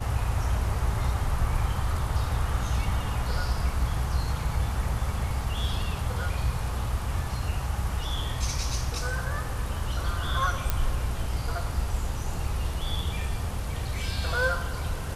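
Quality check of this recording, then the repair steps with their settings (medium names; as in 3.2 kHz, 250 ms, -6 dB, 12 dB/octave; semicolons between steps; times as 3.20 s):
10.70 s: pop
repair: de-click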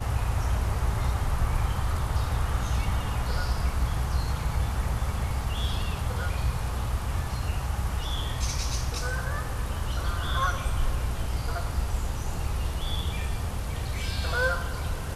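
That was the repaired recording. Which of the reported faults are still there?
nothing left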